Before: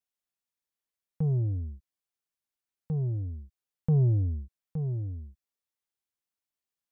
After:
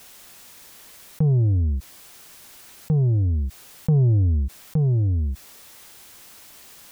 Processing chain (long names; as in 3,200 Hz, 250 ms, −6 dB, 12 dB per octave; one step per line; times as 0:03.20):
envelope flattener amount 70%
level +5 dB